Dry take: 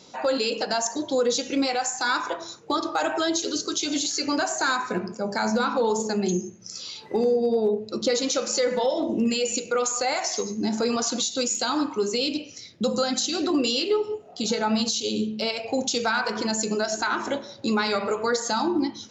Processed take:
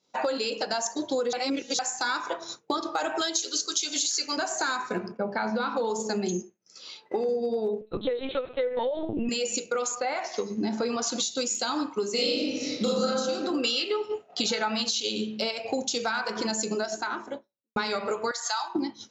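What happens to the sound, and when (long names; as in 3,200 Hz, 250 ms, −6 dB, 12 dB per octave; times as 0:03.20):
0:01.33–0:01.79: reverse
0:03.21–0:04.37: spectral tilt +3 dB per octave
0:05.11–0:05.75: low-pass filter 2,500 Hz → 5,200 Hz 24 dB per octave
0:06.42–0:07.29: bass and treble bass −11 dB, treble −9 dB
0:07.81–0:09.29: linear-prediction vocoder at 8 kHz pitch kept
0:09.94–0:11.01: low-pass filter 2,600 Hz → 4,400 Hz
0:12.13–0:13.06: thrown reverb, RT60 1.2 s, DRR −10.5 dB
0:13.63–0:15.38: parametric band 2,100 Hz +9.5 dB 2.8 octaves
0:16.58–0:17.76: fade out and dull
0:18.31–0:18.75: high-pass filter 840 Hz 24 dB per octave
whole clip: low-shelf EQ 120 Hz −9 dB; downward compressor 6 to 1, threshold −33 dBFS; downward expander −34 dBFS; level +7.5 dB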